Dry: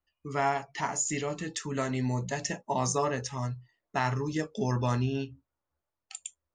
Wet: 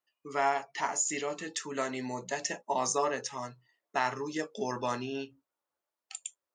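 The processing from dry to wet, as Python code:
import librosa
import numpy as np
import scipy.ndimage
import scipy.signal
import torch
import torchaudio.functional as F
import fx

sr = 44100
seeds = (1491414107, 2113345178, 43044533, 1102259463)

y = scipy.signal.sosfilt(scipy.signal.butter(2, 340.0, 'highpass', fs=sr, output='sos'), x)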